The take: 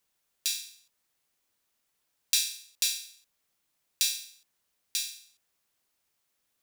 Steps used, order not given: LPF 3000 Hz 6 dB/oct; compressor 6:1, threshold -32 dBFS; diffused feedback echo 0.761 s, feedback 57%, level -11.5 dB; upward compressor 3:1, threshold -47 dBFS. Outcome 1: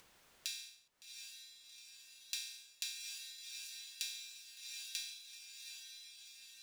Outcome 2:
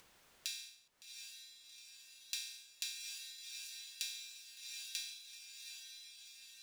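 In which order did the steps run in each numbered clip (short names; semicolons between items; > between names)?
diffused feedback echo > upward compressor > compressor > LPF; diffused feedback echo > compressor > upward compressor > LPF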